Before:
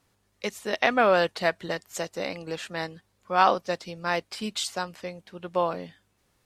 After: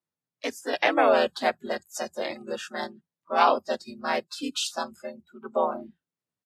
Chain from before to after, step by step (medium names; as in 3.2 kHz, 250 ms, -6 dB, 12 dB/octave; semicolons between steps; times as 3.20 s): harmony voices -3 st -1 dB; dynamic bell 1.4 kHz, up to -4 dB, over -36 dBFS, Q 1.9; spectral noise reduction 25 dB; frequency shift +75 Hz; trim -1.5 dB